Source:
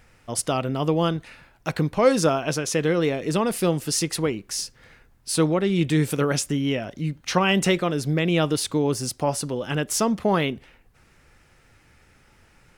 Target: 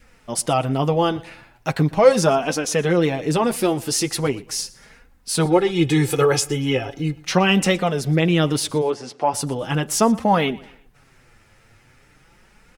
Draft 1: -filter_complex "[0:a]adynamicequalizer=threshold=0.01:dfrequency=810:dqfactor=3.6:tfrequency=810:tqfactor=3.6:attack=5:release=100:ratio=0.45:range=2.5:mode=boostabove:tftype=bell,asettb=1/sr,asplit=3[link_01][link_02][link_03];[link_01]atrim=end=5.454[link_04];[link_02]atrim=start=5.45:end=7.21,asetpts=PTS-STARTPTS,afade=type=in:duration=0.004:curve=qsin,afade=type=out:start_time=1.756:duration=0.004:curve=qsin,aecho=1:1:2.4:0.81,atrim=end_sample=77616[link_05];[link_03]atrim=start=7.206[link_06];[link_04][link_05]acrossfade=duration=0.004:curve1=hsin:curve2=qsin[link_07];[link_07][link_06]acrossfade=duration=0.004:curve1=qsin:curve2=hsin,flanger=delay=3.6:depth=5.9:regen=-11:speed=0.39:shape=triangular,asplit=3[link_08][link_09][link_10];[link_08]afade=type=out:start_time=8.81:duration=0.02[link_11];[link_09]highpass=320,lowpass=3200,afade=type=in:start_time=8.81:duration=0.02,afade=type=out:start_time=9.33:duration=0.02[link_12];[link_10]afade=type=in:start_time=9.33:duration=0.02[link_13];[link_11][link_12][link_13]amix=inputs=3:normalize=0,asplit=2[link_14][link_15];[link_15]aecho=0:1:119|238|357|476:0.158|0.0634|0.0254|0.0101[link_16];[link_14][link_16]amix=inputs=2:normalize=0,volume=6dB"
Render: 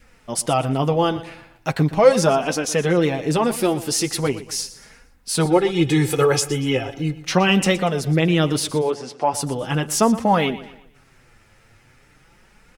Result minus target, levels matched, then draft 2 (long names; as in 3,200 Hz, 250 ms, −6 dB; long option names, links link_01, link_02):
echo-to-direct +6.5 dB
-filter_complex "[0:a]adynamicequalizer=threshold=0.01:dfrequency=810:dqfactor=3.6:tfrequency=810:tqfactor=3.6:attack=5:release=100:ratio=0.45:range=2.5:mode=boostabove:tftype=bell,asettb=1/sr,asplit=3[link_01][link_02][link_03];[link_01]atrim=end=5.454[link_04];[link_02]atrim=start=5.45:end=7.21,asetpts=PTS-STARTPTS,afade=type=in:duration=0.004:curve=qsin,afade=type=out:start_time=1.756:duration=0.004:curve=qsin,aecho=1:1:2.4:0.81,atrim=end_sample=77616[link_05];[link_03]atrim=start=7.206[link_06];[link_04][link_05]acrossfade=duration=0.004:curve1=hsin:curve2=qsin[link_07];[link_07][link_06]acrossfade=duration=0.004:curve1=qsin:curve2=hsin,flanger=delay=3.6:depth=5.9:regen=-11:speed=0.39:shape=triangular,asplit=3[link_08][link_09][link_10];[link_08]afade=type=out:start_time=8.81:duration=0.02[link_11];[link_09]highpass=320,lowpass=3200,afade=type=in:start_time=8.81:duration=0.02,afade=type=out:start_time=9.33:duration=0.02[link_12];[link_10]afade=type=in:start_time=9.33:duration=0.02[link_13];[link_11][link_12][link_13]amix=inputs=3:normalize=0,asplit=2[link_14][link_15];[link_15]aecho=0:1:119|238|357:0.075|0.03|0.012[link_16];[link_14][link_16]amix=inputs=2:normalize=0,volume=6dB"